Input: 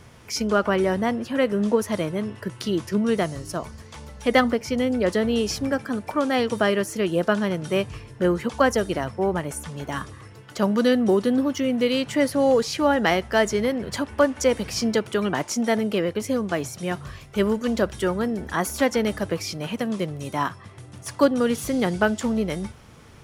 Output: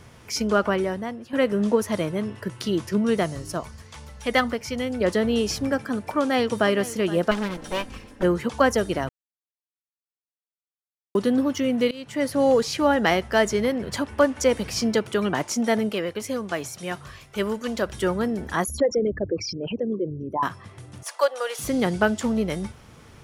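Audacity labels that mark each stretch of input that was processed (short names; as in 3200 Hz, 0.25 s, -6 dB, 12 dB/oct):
0.650000	1.330000	fade out quadratic, to -10.5 dB
3.600000	5.010000	bell 320 Hz -6 dB 2.3 oct
6.180000	6.710000	echo throw 0.47 s, feedback 15%, level -16 dB
7.310000	8.230000	minimum comb delay 3.8 ms
9.090000	11.150000	mute
11.910000	12.410000	fade in, from -22.5 dB
15.890000	17.890000	low shelf 480 Hz -7 dB
18.640000	20.430000	formant sharpening exponent 3
21.030000	21.590000	steep high-pass 520 Hz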